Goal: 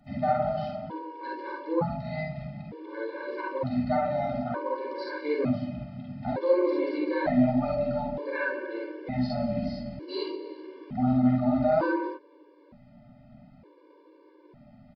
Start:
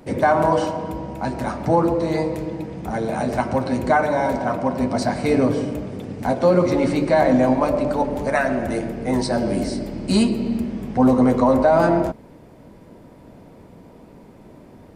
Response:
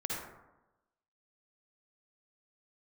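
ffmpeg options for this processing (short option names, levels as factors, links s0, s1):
-filter_complex "[0:a]aresample=11025,aresample=44100[s0];[1:a]atrim=start_sample=2205,atrim=end_sample=3969,asetrate=52920,aresample=44100[s1];[s0][s1]afir=irnorm=-1:irlink=0,afftfilt=real='re*gt(sin(2*PI*0.55*pts/sr)*(1-2*mod(floor(b*sr/1024/300),2)),0)':imag='im*gt(sin(2*PI*0.55*pts/sr)*(1-2*mod(floor(b*sr/1024/300),2)),0)':win_size=1024:overlap=0.75,volume=0.473"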